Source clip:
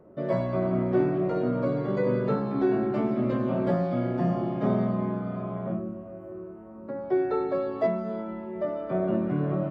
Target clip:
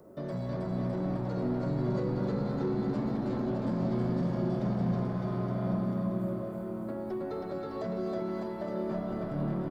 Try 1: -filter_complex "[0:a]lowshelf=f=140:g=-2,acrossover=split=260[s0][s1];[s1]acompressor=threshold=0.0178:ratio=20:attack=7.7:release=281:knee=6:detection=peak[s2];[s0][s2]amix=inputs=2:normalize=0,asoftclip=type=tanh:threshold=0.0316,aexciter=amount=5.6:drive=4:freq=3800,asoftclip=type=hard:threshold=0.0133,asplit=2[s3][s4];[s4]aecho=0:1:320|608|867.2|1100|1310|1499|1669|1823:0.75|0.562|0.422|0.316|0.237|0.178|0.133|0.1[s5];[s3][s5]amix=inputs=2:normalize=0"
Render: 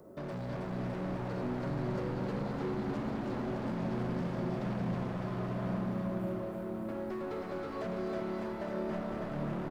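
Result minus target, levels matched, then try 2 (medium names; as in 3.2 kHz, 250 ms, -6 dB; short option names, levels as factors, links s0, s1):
hard clipper: distortion +30 dB
-filter_complex "[0:a]lowshelf=f=140:g=-2,acrossover=split=260[s0][s1];[s1]acompressor=threshold=0.0178:ratio=20:attack=7.7:release=281:knee=6:detection=peak[s2];[s0][s2]amix=inputs=2:normalize=0,asoftclip=type=tanh:threshold=0.0316,aexciter=amount=5.6:drive=4:freq=3800,asoftclip=type=hard:threshold=0.0299,asplit=2[s3][s4];[s4]aecho=0:1:320|608|867.2|1100|1310|1499|1669|1823:0.75|0.562|0.422|0.316|0.237|0.178|0.133|0.1[s5];[s3][s5]amix=inputs=2:normalize=0"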